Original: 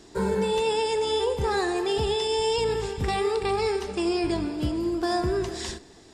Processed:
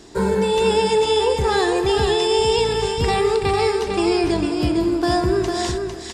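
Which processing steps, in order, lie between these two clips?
delay 452 ms -5.5 dB; trim +6 dB

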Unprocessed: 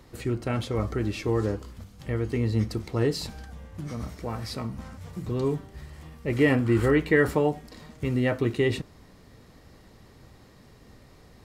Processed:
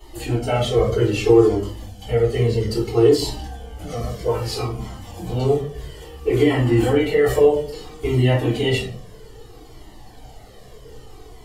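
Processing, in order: coarse spectral quantiser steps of 15 dB; treble shelf 2.9 kHz +11 dB; peak limiter -17.5 dBFS, peak gain reduction 9 dB; small resonant body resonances 440/730/3000 Hz, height 14 dB, ringing for 20 ms; reverberation RT60 0.45 s, pre-delay 3 ms, DRR -11 dB; Shepard-style flanger falling 0.61 Hz; trim -7 dB

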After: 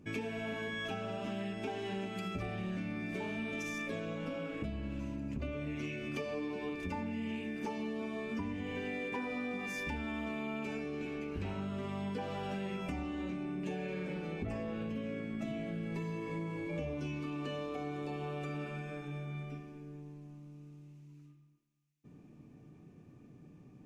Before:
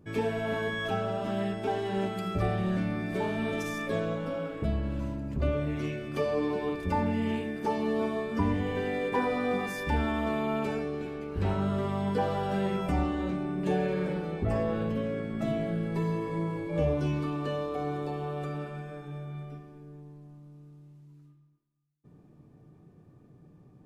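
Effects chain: fifteen-band graphic EQ 250 Hz +7 dB, 2.5 kHz +11 dB, 6.3 kHz +8 dB; compression, threshold -33 dBFS, peak gain reduction 13 dB; trim -3 dB

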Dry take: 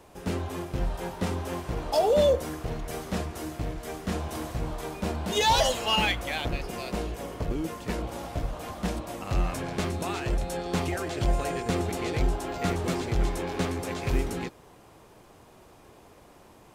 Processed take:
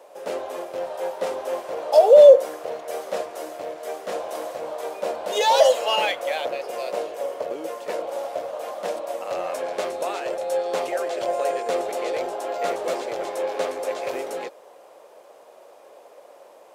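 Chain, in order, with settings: resonant high-pass 550 Hz, resonance Q 4.9

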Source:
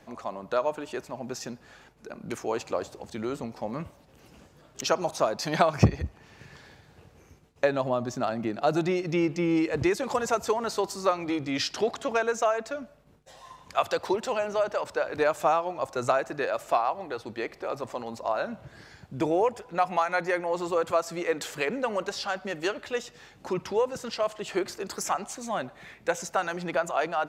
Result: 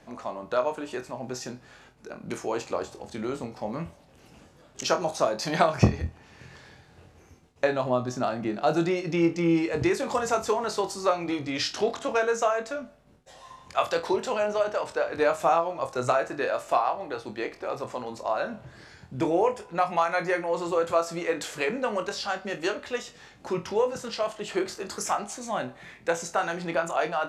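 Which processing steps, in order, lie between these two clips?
low-pass 12 kHz 24 dB/octave; flutter echo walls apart 4.1 m, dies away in 0.2 s

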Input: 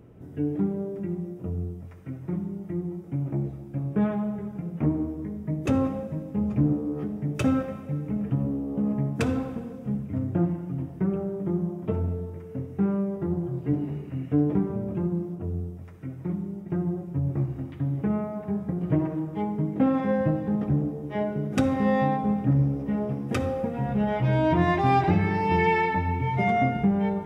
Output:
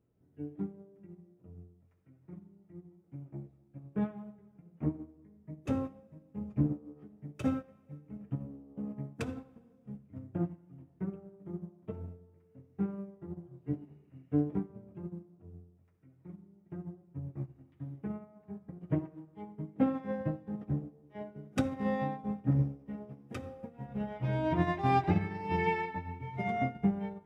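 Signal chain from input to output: upward expansion 2.5:1, over -32 dBFS; trim -4 dB

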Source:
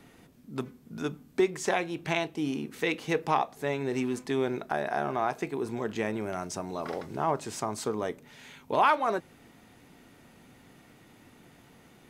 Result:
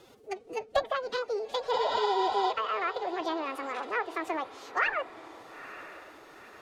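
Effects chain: wide varispeed 1.83×; low-pass that closes with the level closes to 1.8 kHz, closed at -24.5 dBFS; spectral replace 1.76–2.49 s, 510–8100 Hz before; formant-preserving pitch shift +8.5 st; echo that smears into a reverb 927 ms, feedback 47%, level -15 dB

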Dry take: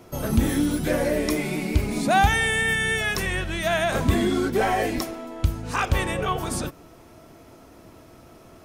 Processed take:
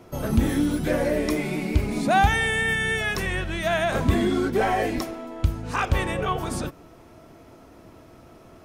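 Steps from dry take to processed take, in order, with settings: treble shelf 4.4 kHz -6 dB

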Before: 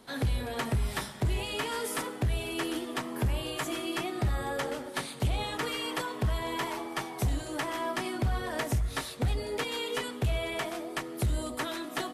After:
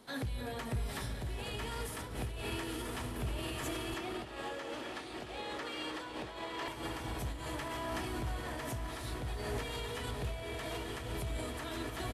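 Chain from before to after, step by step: echo that smears into a reverb 954 ms, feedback 61%, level -4.5 dB; peak limiter -27.5 dBFS, peak gain reduction 10.5 dB; 3.94–6.68 s: three-band isolator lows -16 dB, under 220 Hz, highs -12 dB, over 7 kHz; delay 299 ms -12 dB; random flutter of the level, depth 65%; trim -1 dB

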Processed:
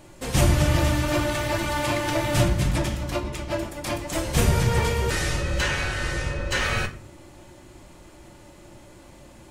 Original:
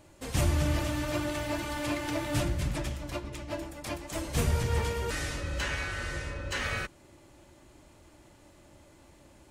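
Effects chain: simulated room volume 380 m³, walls furnished, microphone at 0.95 m; trim +7.5 dB

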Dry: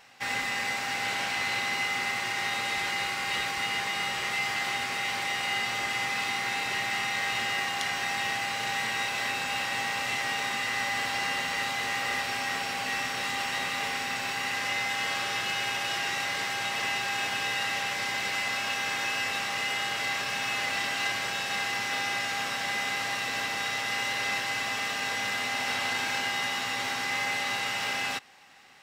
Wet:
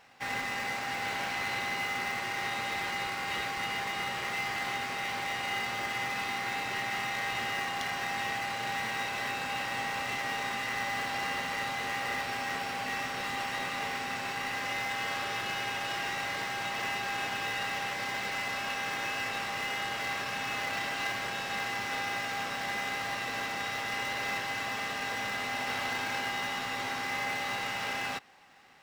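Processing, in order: treble shelf 4.3 kHz -7 dB; in parallel at -10.5 dB: sample-rate reducer 4 kHz, jitter 20%; on the sum: trim -3 dB

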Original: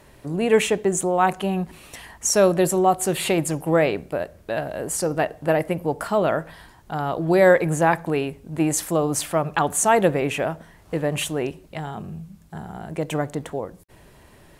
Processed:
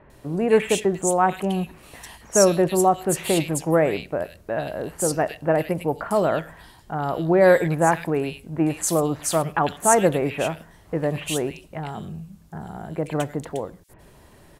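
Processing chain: bands offset in time lows, highs 100 ms, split 2.3 kHz

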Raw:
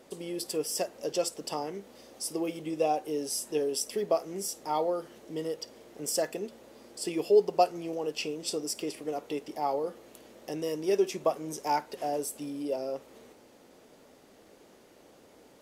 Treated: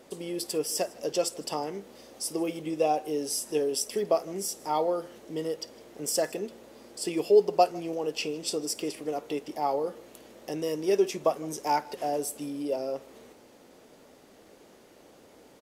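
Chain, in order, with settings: delay 156 ms -23 dB; trim +2 dB

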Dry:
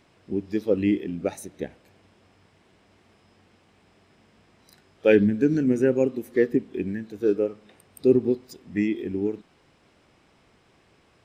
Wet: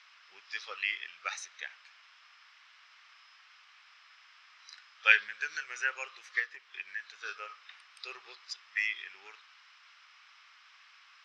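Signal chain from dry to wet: 6.39–7.08 s: compression 2:1, threshold -27 dBFS, peak gain reduction 7 dB; elliptic band-pass 1.2–5.7 kHz, stop band 60 dB; trim +7.5 dB

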